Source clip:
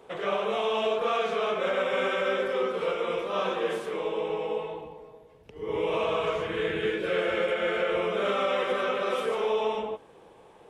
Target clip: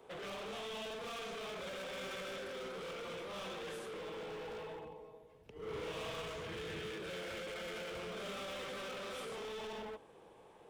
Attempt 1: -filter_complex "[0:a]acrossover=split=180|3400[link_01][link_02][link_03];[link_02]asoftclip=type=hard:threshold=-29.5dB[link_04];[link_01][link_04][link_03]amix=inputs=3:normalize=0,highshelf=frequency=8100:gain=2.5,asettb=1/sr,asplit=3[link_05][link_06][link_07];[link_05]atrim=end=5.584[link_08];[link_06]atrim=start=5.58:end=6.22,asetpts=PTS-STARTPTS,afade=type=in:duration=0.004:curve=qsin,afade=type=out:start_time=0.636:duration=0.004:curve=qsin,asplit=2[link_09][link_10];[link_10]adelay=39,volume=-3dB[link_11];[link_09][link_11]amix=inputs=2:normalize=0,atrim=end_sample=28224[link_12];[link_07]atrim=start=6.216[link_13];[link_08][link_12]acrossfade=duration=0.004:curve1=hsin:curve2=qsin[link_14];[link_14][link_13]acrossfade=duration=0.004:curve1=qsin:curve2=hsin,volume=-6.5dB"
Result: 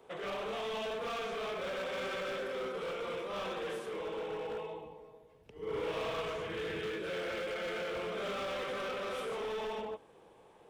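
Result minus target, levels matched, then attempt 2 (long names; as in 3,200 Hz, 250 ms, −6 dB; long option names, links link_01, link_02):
hard clipping: distortion −4 dB
-filter_complex "[0:a]acrossover=split=180|3400[link_01][link_02][link_03];[link_02]asoftclip=type=hard:threshold=-38dB[link_04];[link_01][link_04][link_03]amix=inputs=3:normalize=0,highshelf=frequency=8100:gain=2.5,asettb=1/sr,asplit=3[link_05][link_06][link_07];[link_05]atrim=end=5.584[link_08];[link_06]atrim=start=5.58:end=6.22,asetpts=PTS-STARTPTS,afade=type=in:duration=0.004:curve=qsin,afade=type=out:start_time=0.636:duration=0.004:curve=qsin,asplit=2[link_09][link_10];[link_10]adelay=39,volume=-3dB[link_11];[link_09][link_11]amix=inputs=2:normalize=0,atrim=end_sample=28224[link_12];[link_07]atrim=start=6.216[link_13];[link_08][link_12]acrossfade=duration=0.004:curve1=hsin:curve2=qsin[link_14];[link_14][link_13]acrossfade=duration=0.004:curve1=qsin:curve2=hsin,volume=-6.5dB"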